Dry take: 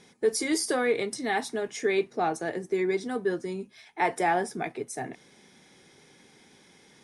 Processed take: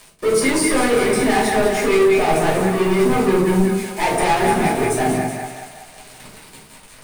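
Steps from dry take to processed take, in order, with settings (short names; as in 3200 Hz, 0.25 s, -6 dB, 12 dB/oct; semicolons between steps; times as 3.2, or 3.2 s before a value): in parallel at +3 dB: limiter -22.5 dBFS, peak gain reduction 8 dB; on the sum: tone controls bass +1 dB, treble -12 dB; bit-crush 7-bit; on a send: split-band echo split 620 Hz, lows 85 ms, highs 0.189 s, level -6 dB; on the sum: soft clip -26 dBFS, distortion -7 dB; bell 9000 Hz +12 dB 0.34 oct; shoebox room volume 350 m³, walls furnished, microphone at 5.9 m; gain +2 dB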